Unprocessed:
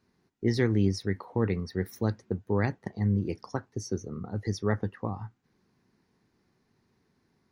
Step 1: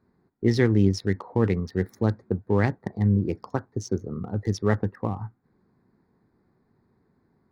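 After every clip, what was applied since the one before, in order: local Wiener filter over 15 samples; trim +5 dB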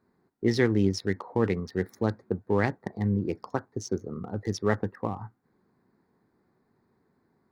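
bass shelf 170 Hz -9.5 dB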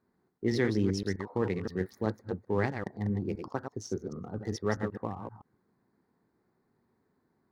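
chunks repeated in reverse 129 ms, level -6.5 dB; trim -5 dB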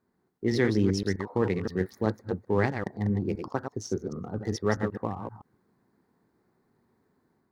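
level rider gain up to 4 dB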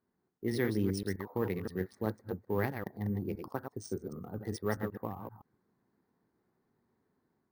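careless resampling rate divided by 3×, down filtered, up hold; trim -7 dB

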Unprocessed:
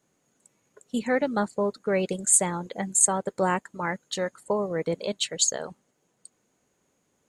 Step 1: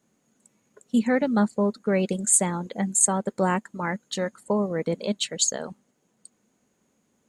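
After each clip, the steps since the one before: peaking EQ 220 Hz +9 dB 0.51 oct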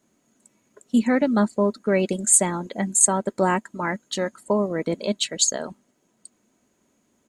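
comb 3.1 ms, depth 31%; trim +2.5 dB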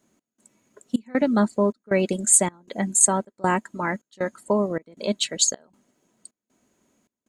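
trance gate "xx..xxxx" 157 bpm -24 dB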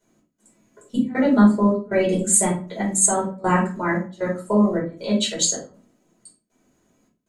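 reverberation RT60 0.40 s, pre-delay 5 ms, DRR -6.5 dB; trim -7 dB

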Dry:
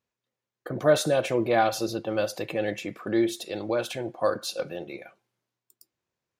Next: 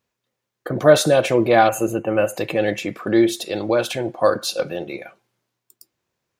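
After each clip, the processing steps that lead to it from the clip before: time-frequency box 1.69–2.38 s, 3.1–6.2 kHz -29 dB; trim +8 dB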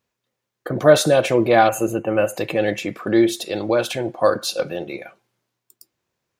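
no audible change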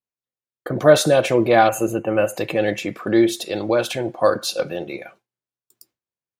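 gate with hold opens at -36 dBFS

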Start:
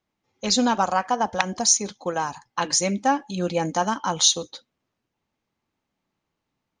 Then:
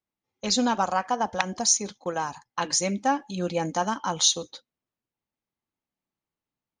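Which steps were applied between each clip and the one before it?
gate -41 dBFS, range -9 dB; trim -3 dB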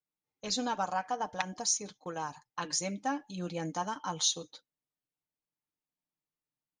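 comb 6.6 ms, depth 47%; trim -9 dB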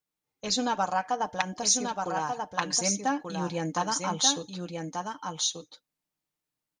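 delay 1186 ms -4.5 dB; trim +5 dB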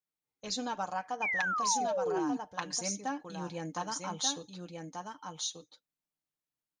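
painted sound fall, 1.22–2.37 s, 250–2500 Hz -24 dBFS; trim -8 dB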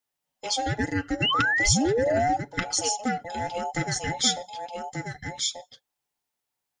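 every band turned upside down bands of 1 kHz; trim +8.5 dB

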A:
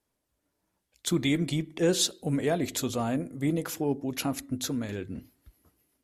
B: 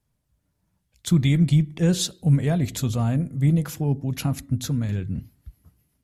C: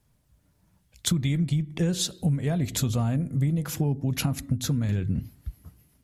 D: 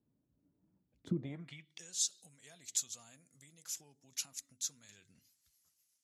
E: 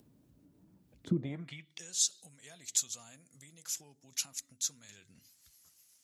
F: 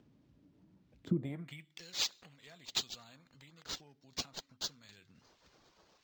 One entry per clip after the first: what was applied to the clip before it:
resonant low shelf 220 Hz +12 dB, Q 1.5
compression 10:1, threshold -29 dBFS, peak gain reduction 16 dB; trim +7 dB
band-pass sweep 290 Hz -> 6.6 kHz, 1.11–1.82 s; trim -1 dB
upward compressor, threshold -59 dBFS; trim +4.5 dB
decimation joined by straight lines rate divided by 4×; trim -1.5 dB

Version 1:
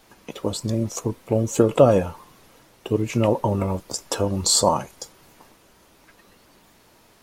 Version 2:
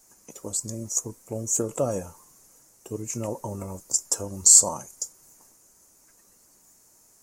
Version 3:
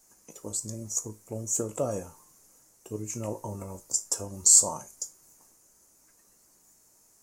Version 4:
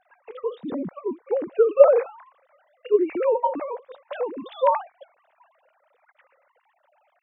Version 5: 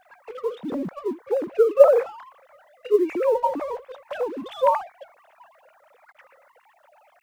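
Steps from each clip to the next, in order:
resonant high shelf 4.9 kHz +12.5 dB, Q 3; trim -11.5 dB
feedback comb 53 Hz, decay 0.26 s, harmonics all, mix 60%
formants replaced by sine waves; trim +7 dB
companding laws mixed up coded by mu

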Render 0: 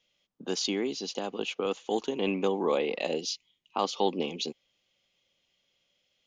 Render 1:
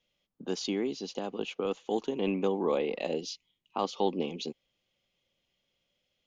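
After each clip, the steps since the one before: tilt EQ -1.5 dB/octave; trim -3 dB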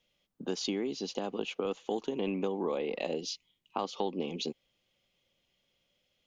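compression 4:1, threshold -32 dBFS, peak gain reduction 9 dB; trim +2.5 dB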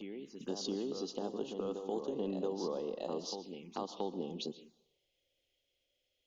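on a send: reverse echo 676 ms -6.5 dB; on the sum: plate-style reverb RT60 0.72 s, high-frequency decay 0.9×, pre-delay 105 ms, DRR 13 dB; touch-sensitive phaser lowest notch 180 Hz, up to 2.3 kHz, full sweep at -32.5 dBFS; trim -4.5 dB

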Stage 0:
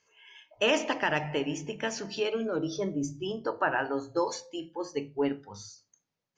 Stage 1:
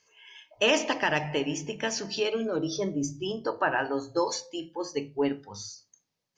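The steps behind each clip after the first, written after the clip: peaking EQ 5 kHz +5.5 dB 1 oct; band-stop 1.4 kHz, Q 16; trim +1.5 dB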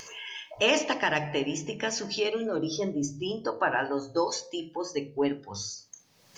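upward compressor, threshold -29 dBFS; de-hum 76.78 Hz, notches 9; wow and flutter 23 cents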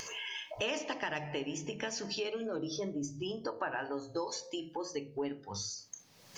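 compression 2.5:1, threshold -40 dBFS, peak gain reduction 14 dB; trim +1.5 dB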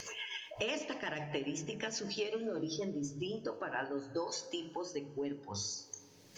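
rotary cabinet horn 8 Hz, later 0.8 Hz, at 3.13 s; plate-style reverb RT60 4.6 s, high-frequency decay 0.5×, DRR 17.5 dB; trim +1 dB

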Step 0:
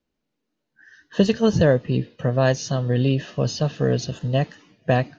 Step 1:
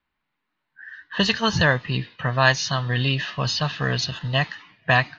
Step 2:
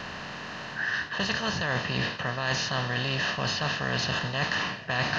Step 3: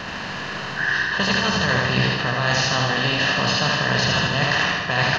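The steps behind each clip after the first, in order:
level-controlled noise filter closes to 2.4 kHz, open at -13.5 dBFS; graphic EQ 250/500/1000/2000/4000 Hz -5/-10/+11/+9/+10 dB; trim -1 dB
spectral levelling over time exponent 0.4; reverse; compression 10:1, threshold -25 dBFS, peak gain reduction 16.5 dB; reverse
feedback delay 78 ms, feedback 57%, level -3 dB; on a send at -10.5 dB: reverberation RT60 1.3 s, pre-delay 77 ms; on the sum: trim +6 dB

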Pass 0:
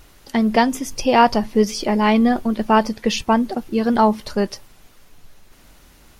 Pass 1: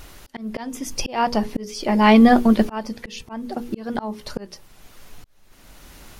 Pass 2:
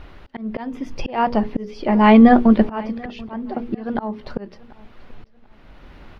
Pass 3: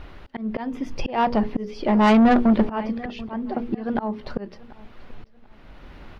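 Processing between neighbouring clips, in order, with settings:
hum notches 60/120/180/240/300/360/420/480 Hz; slow attack 723 ms; trim +6 dB
distance through air 360 m; feedback delay 736 ms, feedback 31%, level -22.5 dB; trim +3 dB
saturation -11.5 dBFS, distortion -10 dB

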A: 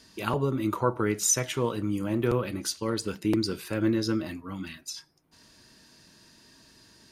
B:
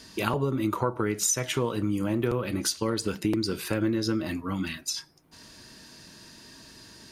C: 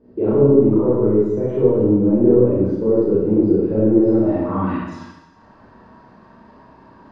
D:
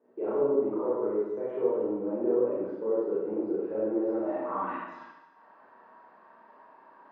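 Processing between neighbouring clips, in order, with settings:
compression 4:1, threshold -31 dBFS, peak gain reduction 10.5 dB; trim +7 dB
waveshaping leveller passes 2; Schroeder reverb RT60 1.1 s, combs from 29 ms, DRR -9.5 dB; low-pass sweep 450 Hz -> 990 Hz, 3.95–4.65 s; trim -6.5 dB
band-pass 610–2100 Hz; trim -4.5 dB

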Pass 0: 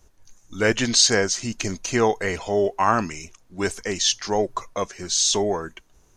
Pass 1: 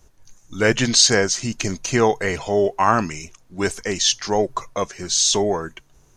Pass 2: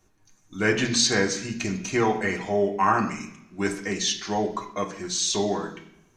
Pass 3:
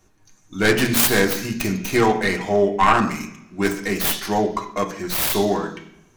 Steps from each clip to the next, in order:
peaking EQ 140 Hz +9.5 dB 0.22 oct; trim +2.5 dB
reverberation RT60 0.70 s, pre-delay 3 ms, DRR 1 dB; trim -9 dB
tracing distortion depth 0.48 ms; trim +5.5 dB

